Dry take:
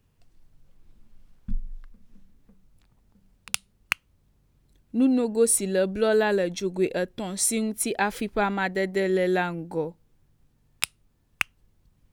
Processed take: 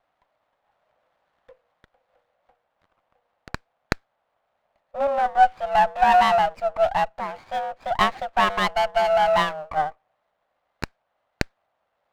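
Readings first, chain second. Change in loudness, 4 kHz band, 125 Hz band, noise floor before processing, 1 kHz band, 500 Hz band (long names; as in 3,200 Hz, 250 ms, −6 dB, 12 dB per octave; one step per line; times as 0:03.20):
+3.5 dB, +3.5 dB, −2.0 dB, −66 dBFS, +13.5 dB, +1.0 dB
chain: single-sideband voice off tune +290 Hz 340–2,100 Hz
windowed peak hold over 9 samples
level +6.5 dB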